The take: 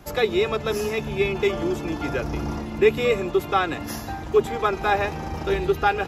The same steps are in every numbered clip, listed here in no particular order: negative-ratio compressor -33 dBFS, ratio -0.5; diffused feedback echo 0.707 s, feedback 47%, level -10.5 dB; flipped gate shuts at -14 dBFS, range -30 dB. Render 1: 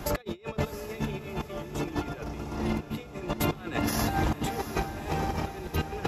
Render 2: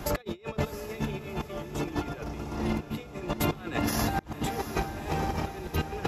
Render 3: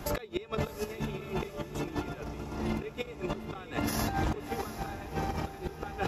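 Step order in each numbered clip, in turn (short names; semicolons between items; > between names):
negative-ratio compressor > flipped gate > diffused feedback echo; negative-ratio compressor > diffused feedback echo > flipped gate; flipped gate > negative-ratio compressor > diffused feedback echo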